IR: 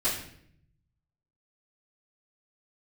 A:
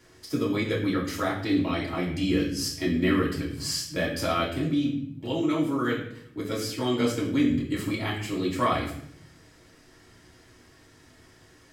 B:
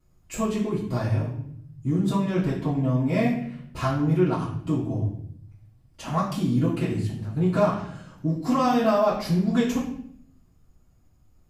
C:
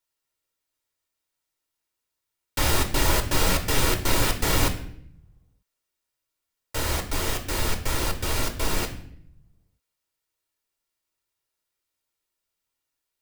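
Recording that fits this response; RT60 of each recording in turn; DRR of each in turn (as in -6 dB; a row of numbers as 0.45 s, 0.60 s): B; 0.65 s, 0.65 s, 0.70 s; -5.5 dB, -15.5 dB, 4.5 dB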